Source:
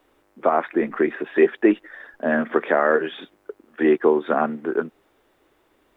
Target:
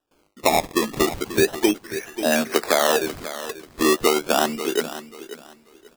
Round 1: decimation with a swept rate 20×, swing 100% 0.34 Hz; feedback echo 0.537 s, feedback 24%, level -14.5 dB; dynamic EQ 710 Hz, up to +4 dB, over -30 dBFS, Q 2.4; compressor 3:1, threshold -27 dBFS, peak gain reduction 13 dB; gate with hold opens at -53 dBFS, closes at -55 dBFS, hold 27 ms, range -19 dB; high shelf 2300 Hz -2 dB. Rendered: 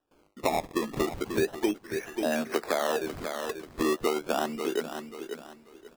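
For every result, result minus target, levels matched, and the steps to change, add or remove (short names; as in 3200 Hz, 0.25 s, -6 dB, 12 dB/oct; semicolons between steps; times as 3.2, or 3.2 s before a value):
compressor: peak gain reduction +8 dB; 4000 Hz band -3.0 dB
change: compressor 3:1, threshold -15 dBFS, peak gain reduction 5 dB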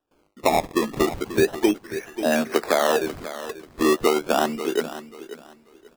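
4000 Hz band -4.0 dB
change: high shelf 2300 Hz +5 dB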